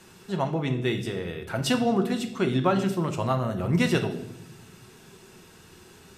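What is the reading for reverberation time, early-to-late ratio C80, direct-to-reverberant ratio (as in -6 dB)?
no single decay rate, 13.5 dB, 4.5 dB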